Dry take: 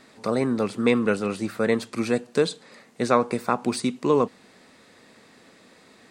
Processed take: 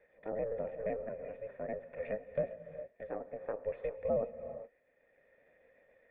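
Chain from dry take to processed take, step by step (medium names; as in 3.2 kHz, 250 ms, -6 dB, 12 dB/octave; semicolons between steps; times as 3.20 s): pitch shift switched off and on -2.5 st, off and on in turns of 64 ms; high-pass 270 Hz 12 dB/octave; low-pass that closes with the level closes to 1.2 kHz, closed at -21.5 dBFS; ring modulator 220 Hz; cascade formant filter e; tremolo triangle 0.57 Hz, depth 60%; gated-style reverb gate 440 ms rising, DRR 11 dB; trim +4 dB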